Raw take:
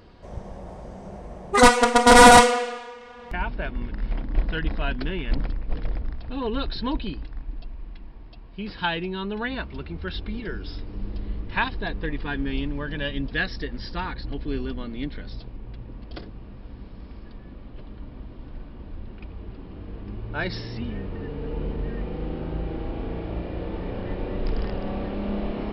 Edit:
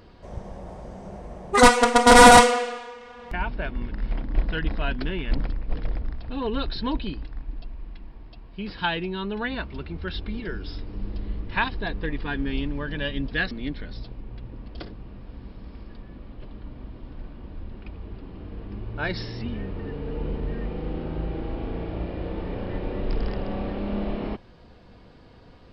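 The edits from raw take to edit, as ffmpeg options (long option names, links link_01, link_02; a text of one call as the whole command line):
ffmpeg -i in.wav -filter_complex "[0:a]asplit=2[link_01][link_02];[link_01]atrim=end=13.512[link_03];[link_02]atrim=start=14.868[link_04];[link_03][link_04]acrossfade=duration=0.004:curve1=hsin:curve2=hsin" out.wav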